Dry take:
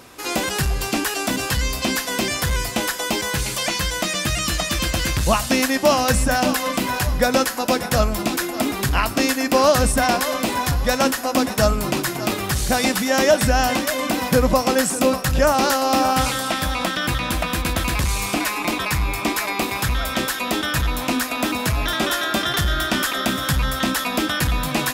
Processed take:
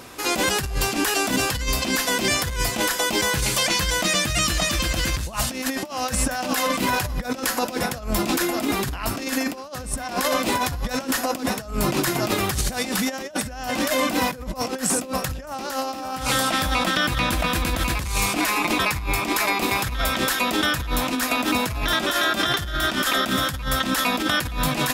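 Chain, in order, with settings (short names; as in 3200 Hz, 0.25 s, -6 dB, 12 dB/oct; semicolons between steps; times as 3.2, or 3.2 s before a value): 5.85–6.66 low shelf 210 Hz -8 dB; negative-ratio compressor -23 dBFS, ratio -0.5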